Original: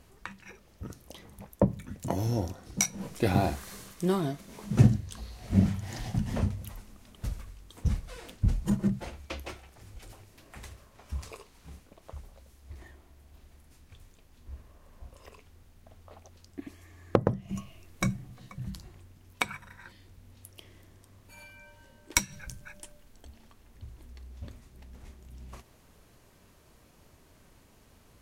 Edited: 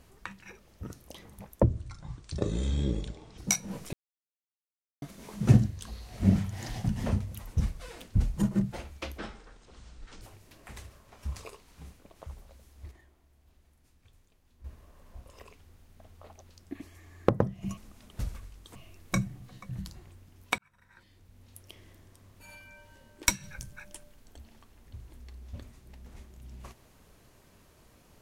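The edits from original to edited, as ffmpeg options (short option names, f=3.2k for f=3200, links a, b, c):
-filter_complex "[0:a]asplit=13[a][b][c][d][e][f][g][h][i][j][k][l][m];[a]atrim=end=1.634[n];[b]atrim=start=1.63:end=2.68,asetpts=PTS-STARTPTS,asetrate=26460,aresample=44100[o];[c]atrim=start=2.676:end=3.23,asetpts=PTS-STARTPTS,afade=t=out:st=0.55:d=0.004:c=hsin[p];[d]atrim=start=3.23:end=4.32,asetpts=PTS-STARTPTS,volume=0[q];[e]atrim=start=4.32:end=6.822,asetpts=PTS-STARTPTS,afade=t=in:d=0.004:c=hsin[r];[f]atrim=start=7.798:end=9.464[s];[g]atrim=start=9.46:end=10.08,asetpts=PTS-STARTPTS,asetrate=26460,aresample=44100[t];[h]atrim=start=10.076:end=12.782[u];[i]atrim=start=12.778:end=14.512,asetpts=PTS-STARTPTS,volume=-8.5dB[v];[j]atrim=start=14.508:end=17.642[w];[k]atrim=start=6.818:end=7.802[x];[l]atrim=start=17.638:end=19.47,asetpts=PTS-STARTPTS,afade=t=out:st=1.828:d=0.004:c=hsin[y];[m]atrim=start=19.47,asetpts=PTS-STARTPTS,afade=t=in:d=1.06[z];[n][o]acrossfade=d=0.004:c1=hsin:c2=hsin[aa];[p][q][r]concat=n=3:v=0:a=1[ab];[aa][ab]acrossfade=d=0.004:c1=hsin:c2=hsin[ac];[ac][s]acrossfade=d=0.004:c1=hsin:c2=hsin[ad];[ad][t]acrossfade=d=0.004:c1=hsin:c2=hsin[ae];[ae][u]acrossfade=d=0.004:c1=hsin:c2=hsin[af];[af][v]acrossfade=d=0.004:c1=hsin:c2=hsin[ag];[ag][w]acrossfade=d=0.004:c1=hsin:c2=hsin[ah];[ah][x]acrossfade=d=0.004:c1=hsin:c2=hsin[ai];[y][z]concat=n=2:v=0:a=1[aj];[ai][aj]acrossfade=d=0.004:c1=hsin:c2=hsin"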